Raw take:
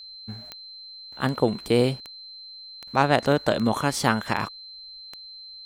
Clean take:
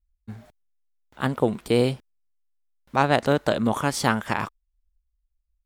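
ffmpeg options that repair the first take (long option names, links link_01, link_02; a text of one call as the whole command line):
ffmpeg -i in.wav -af "adeclick=threshold=4,bandreject=frequency=4100:width=30" out.wav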